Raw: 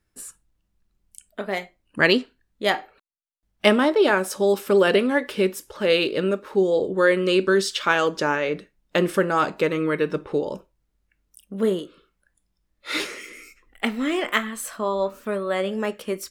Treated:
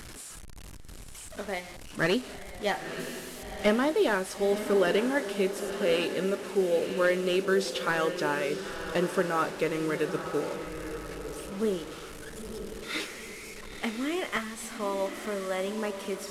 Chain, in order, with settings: delta modulation 64 kbps, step -31 dBFS; on a send: diffused feedback echo 0.948 s, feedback 44%, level -9 dB; on the sum: gain -7 dB

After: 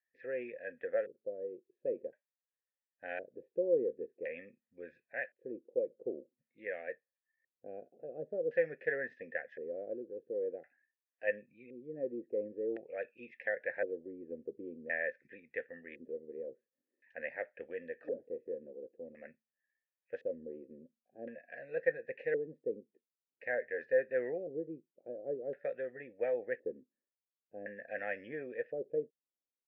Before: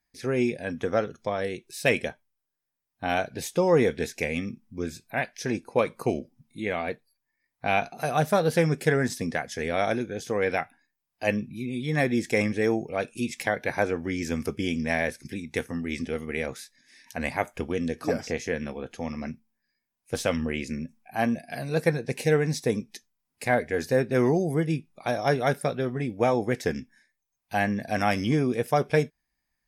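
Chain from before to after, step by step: LFO low-pass square 0.47 Hz 360–1800 Hz; vowel filter e; gain -4.5 dB

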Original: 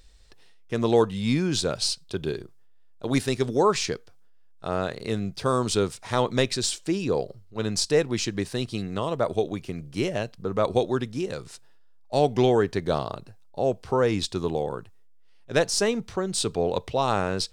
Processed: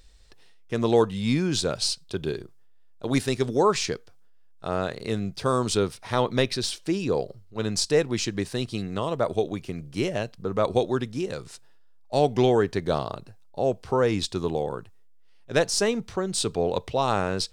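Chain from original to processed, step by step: 5.77–6.87 bell 7400 Hz -9.5 dB 0.39 oct

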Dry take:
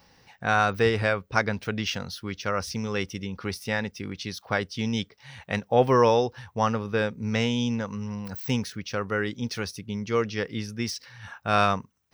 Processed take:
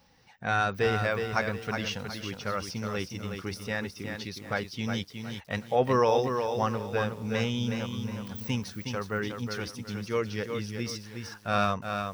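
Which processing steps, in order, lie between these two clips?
bin magnitudes rounded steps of 15 dB; lo-fi delay 0.365 s, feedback 35%, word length 8-bit, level -6 dB; gain -4 dB

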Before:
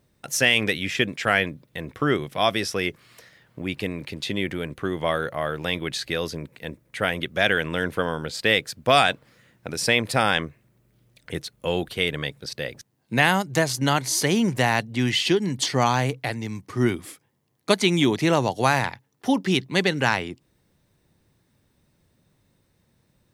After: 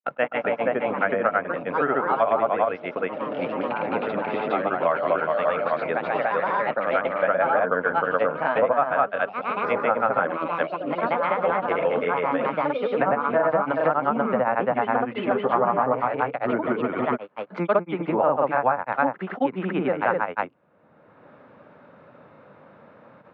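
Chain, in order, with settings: echoes that change speed 0.12 s, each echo +3 st, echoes 3, each echo -6 dB; grains 0.107 s, grains 28/s, spray 0.327 s; treble ducked by the level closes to 1300 Hz, closed at -19.5 dBFS; speaker cabinet 330–2000 Hz, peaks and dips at 360 Hz -8 dB, 570 Hz +5 dB, 1300 Hz +6 dB, 1900 Hz -8 dB; three-band squash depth 70%; gain +5 dB

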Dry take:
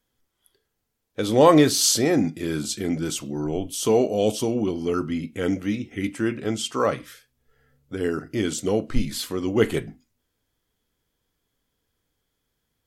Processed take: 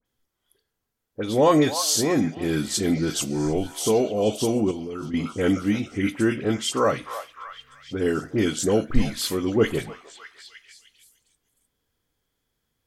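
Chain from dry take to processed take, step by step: vocal rider within 3 dB 0.5 s; delay with a stepping band-pass 0.303 s, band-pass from 910 Hz, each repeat 0.7 oct, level -8 dB; 1.37–2.15 whine 6700 Hz -48 dBFS; dispersion highs, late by 56 ms, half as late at 2300 Hz; 4.71–5.14 level quantiser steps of 16 dB

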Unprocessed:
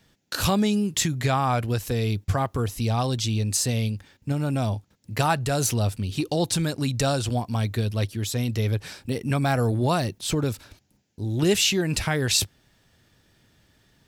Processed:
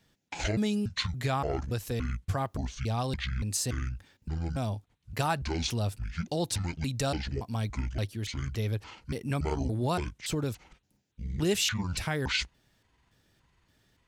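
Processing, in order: trilling pitch shifter -10 st, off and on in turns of 0.285 s; gain -6.5 dB

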